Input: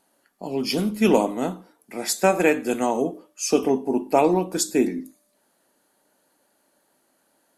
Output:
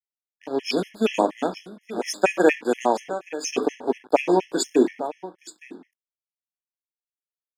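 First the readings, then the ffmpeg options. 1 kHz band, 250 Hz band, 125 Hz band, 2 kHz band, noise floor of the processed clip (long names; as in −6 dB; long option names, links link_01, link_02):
0.0 dB, −2.5 dB, −7.5 dB, +1.0 dB, below −85 dBFS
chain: -filter_complex "[0:a]bandreject=frequency=217.9:width_type=h:width=4,bandreject=frequency=435.8:width_type=h:width=4,bandreject=frequency=653.7:width_type=h:width=4,bandreject=frequency=871.6:width_type=h:width=4,bandreject=frequency=1089.5:width_type=h:width=4,bandreject=frequency=1307.4:width_type=h:width=4,bandreject=frequency=1525.3:width_type=h:width=4,bandreject=frequency=1743.2:width_type=h:width=4,bandreject=frequency=1961.1:width_type=h:width=4,bandreject=frequency=2179:width_type=h:width=4,bandreject=frequency=2396.9:width_type=h:width=4,bandreject=frequency=2614.8:width_type=h:width=4,bandreject=frequency=2832.7:width_type=h:width=4,bandreject=frequency=3050.6:width_type=h:width=4,bandreject=frequency=3268.5:width_type=h:width=4,bandreject=frequency=3486.4:width_type=h:width=4,aeval=exprs='sgn(val(0))*max(abs(val(0))-0.0126,0)':channel_layout=same,acrossover=split=230 6900:gain=0.126 1 0.158[link_01][link_02][link_03];[link_01][link_02][link_03]amix=inputs=3:normalize=0,aecho=1:1:868:0.178,afftfilt=real='re*gt(sin(2*PI*4.2*pts/sr)*(1-2*mod(floor(b*sr/1024/1700),2)),0)':imag='im*gt(sin(2*PI*4.2*pts/sr)*(1-2*mod(floor(b*sr/1024/1700),2)),0)':win_size=1024:overlap=0.75,volume=5dB"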